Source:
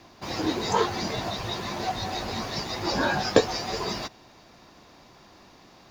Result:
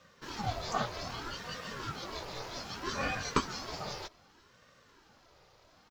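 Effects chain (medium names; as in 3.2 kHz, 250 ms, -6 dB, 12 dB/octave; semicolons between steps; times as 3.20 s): high-pass 110 Hz; comb 3.1 ms, depth 53%; ring modulator with a swept carrier 540 Hz, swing 60%, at 0.64 Hz; trim -7.5 dB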